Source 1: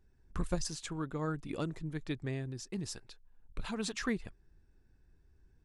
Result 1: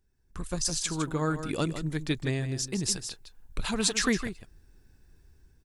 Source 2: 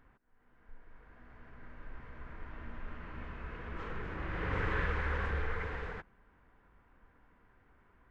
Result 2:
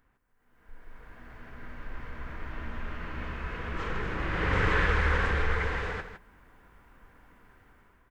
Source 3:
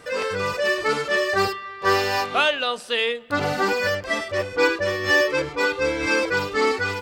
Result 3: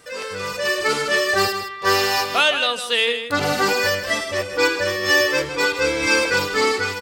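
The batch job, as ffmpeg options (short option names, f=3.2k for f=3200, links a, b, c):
-filter_complex "[0:a]asplit=2[a][b];[b]aecho=0:1:159:0.316[c];[a][c]amix=inputs=2:normalize=0,dynaudnorm=f=260:g=5:m=13dB,highshelf=f=3.8k:g=10.5,volume=-6dB"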